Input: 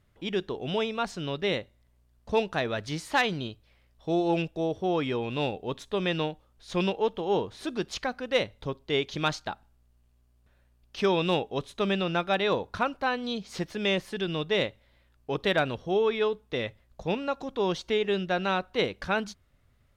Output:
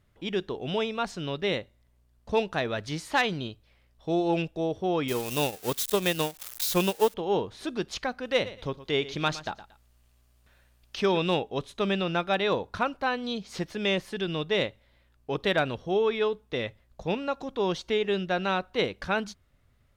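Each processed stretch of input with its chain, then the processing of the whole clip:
5.08–7.14 switching spikes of -24 dBFS + transient shaper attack +6 dB, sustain -12 dB
8.25–11.18 feedback echo 0.115 s, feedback 21%, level -15.5 dB + mismatched tape noise reduction encoder only
whole clip: dry

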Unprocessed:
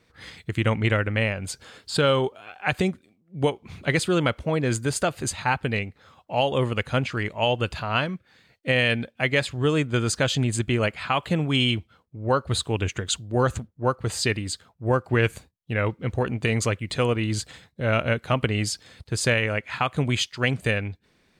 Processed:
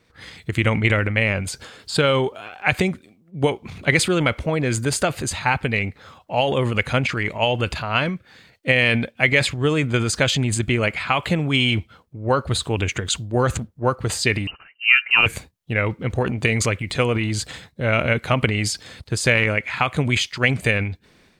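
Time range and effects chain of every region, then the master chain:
14.47–15.26 HPF 68 Hz + inverted band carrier 2900 Hz
whole clip: dynamic EQ 2200 Hz, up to +7 dB, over -43 dBFS, Q 4.3; transient shaper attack +3 dB, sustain +8 dB; gain +1 dB

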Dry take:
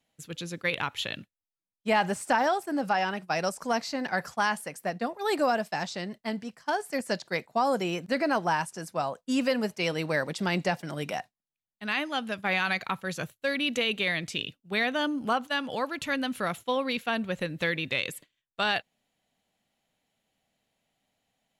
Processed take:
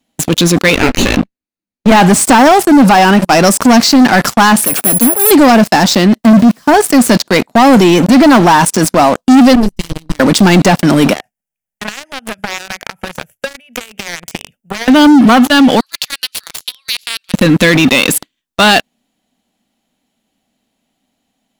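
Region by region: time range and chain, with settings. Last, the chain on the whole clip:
0.75–1.92 minimum comb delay 0.45 ms + LPF 2100 Hz 6 dB/oct + doubler 16 ms -9 dB
4.64–5.31 notch comb 1000 Hz + careless resampling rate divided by 4×, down none, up zero stuff
6.24–6.74 switching spikes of -33 dBFS + LPF 1300 Hz 6 dB/oct + low shelf 420 Hz +7 dB
9.55–10.2 minimum comb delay 1 ms + passive tone stack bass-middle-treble 10-0-1
11.13–14.88 compressor 10:1, threshold -42 dBFS + fixed phaser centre 1100 Hz, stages 6
15.8–17.34 bell 4700 Hz +12 dB 0.54 oct + compressor, threshold -35 dBFS + ladder high-pass 1900 Hz, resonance 20%
whole clip: graphic EQ 125/250/500/2000 Hz -7/+10/-4/-4 dB; sample leveller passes 5; maximiser +21 dB; gain -1 dB

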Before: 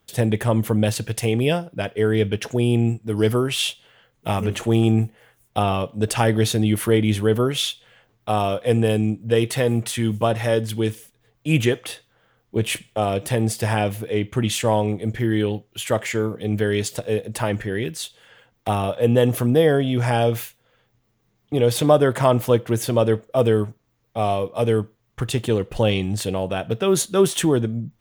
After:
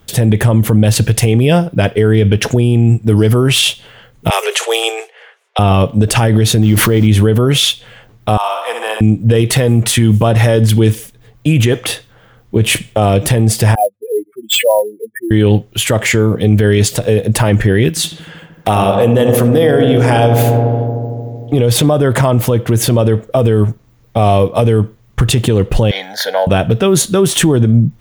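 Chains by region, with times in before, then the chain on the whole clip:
4.3–5.59 steep high-pass 390 Hz 96 dB/oct + low-pass opened by the level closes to 2200 Hz, open at -23 dBFS + tilt shelf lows -6.5 dB, about 1400 Hz
6.62–7.07 level-crossing sampler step -36 dBFS + bell 10000 Hz -8 dB 0.74 oct + backwards sustainer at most 54 dB/s
8.37–9.01 ladder high-pass 790 Hz, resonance 50% + flutter echo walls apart 11 m, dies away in 0.73 s + three-band squash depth 70%
13.75–15.31 spectral contrast raised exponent 3.6 + Bessel high-pass 670 Hz, order 6 + sample-rate reducer 11000 Hz
17.89–21.54 low shelf 200 Hz -10.5 dB + darkening echo 76 ms, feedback 85%, low-pass 1800 Hz, level -7.5 dB
25.91–26.47 HPF 430 Hz 24 dB/oct + bell 1500 Hz +15 dB 0.41 oct + fixed phaser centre 1800 Hz, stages 8
whole clip: low shelf 180 Hz +9 dB; compressor, threshold -15 dBFS; maximiser +15 dB; gain -1 dB

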